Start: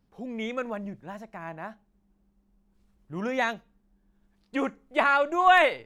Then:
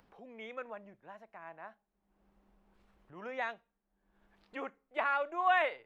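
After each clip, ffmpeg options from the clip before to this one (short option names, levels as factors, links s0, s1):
-filter_complex "[0:a]acrossover=split=410 3400:gain=0.224 1 0.2[s0][s1][s2];[s0][s1][s2]amix=inputs=3:normalize=0,acompressor=mode=upward:threshold=0.00708:ratio=2.5,volume=0.355"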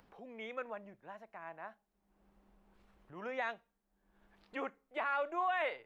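-af "alimiter=level_in=1.5:limit=0.0631:level=0:latency=1:release=21,volume=0.668,volume=1.12"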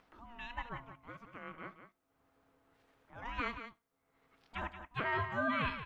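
-af "lowshelf=f=210:g=-11.5,aeval=exprs='val(0)*sin(2*PI*470*n/s)':c=same,aecho=1:1:71|178:0.112|0.316,volume=1.5"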